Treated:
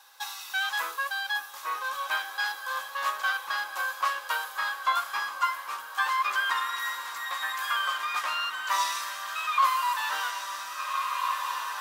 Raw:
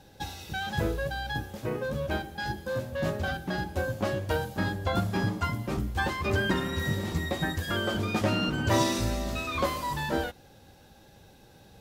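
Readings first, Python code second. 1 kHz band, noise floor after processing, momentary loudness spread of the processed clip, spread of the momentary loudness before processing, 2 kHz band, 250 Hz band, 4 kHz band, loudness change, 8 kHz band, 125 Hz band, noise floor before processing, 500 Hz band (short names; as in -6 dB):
+6.5 dB, -42 dBFS, 7 LU, 7 LU, +5.0 dB, under -30 dB, +3.0 dB, +1.0 dB, +3.0 dB, under -40 dB, -55 dBFS, -16.5 dB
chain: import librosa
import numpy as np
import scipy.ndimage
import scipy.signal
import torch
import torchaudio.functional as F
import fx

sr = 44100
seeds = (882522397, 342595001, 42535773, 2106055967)

y = fx.highpass_res(x, sr, hz=1100.0, q=8.7)
y = fx.tilt_eq(y, sr, slope=3.0)
y = fx.echo_diffused(y, sr, ms=1559, feedback_pct=54, wet_db=-8.0)
y = fx.dynamic_eq(y, sr, hz=2400.0, q=1.0, threshold_db=-33.0, ratio=4.0, max_db=4)
y = fx.rider(y, sr, range_db=4, speed_s=2.0)
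y = y * 10.0 ** (-6.5 / 20.0)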